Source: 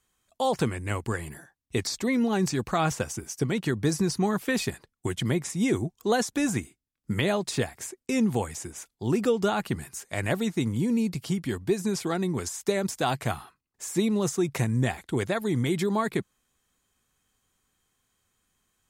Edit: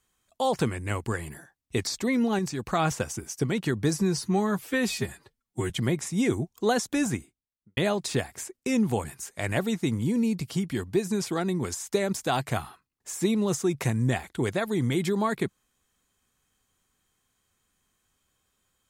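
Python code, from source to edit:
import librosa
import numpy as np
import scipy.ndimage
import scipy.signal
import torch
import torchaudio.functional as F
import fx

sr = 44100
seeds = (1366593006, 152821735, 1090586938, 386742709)

y = fx.studio_fade_out(x, sr, start_s=6.44, length_s=0.76)
y = fx.edit(y, sr, fx.clip_gain(start_s=2.39, length_s=0.27, db=-4.5),
    fx.stretch_span(start_s=3.99, length_s=1.14, factor=1.5),
    fx.cut(start_s=8.47, length_s=1.31), tone=tone)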